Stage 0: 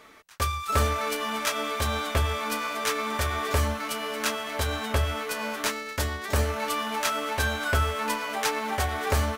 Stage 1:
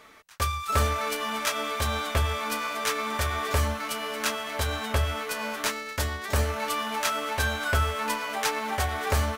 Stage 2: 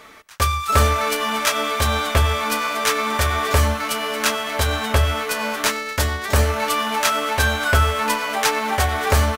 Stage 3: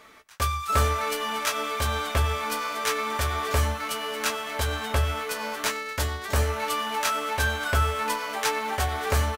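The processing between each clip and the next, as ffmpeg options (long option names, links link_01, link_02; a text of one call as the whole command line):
ffmpeg -i in.wav -af "equalizer=frequency=320:width=1.3:gain=-3" out.wav
ffmpeg -i in.wav -filter_complex "[0:a]asplit=2[link_01][link_02];[link_02]adelay=93.29,volume=-24dB,highshelf=frequency=4000:gain=-2.1[link_03];[link_01][link_03]amix=inputs=2:normalize=0,volume=8dB" out.wav
ffmpeg -i in.wav -filter_complex "[0:a]asplit=2[link_01][link_02];[link_02]adelay=16,volume=-10dB[link_03];[link_01][link_03]amix=inputs=2:normalize=0,volume=-7.5dB" out.wav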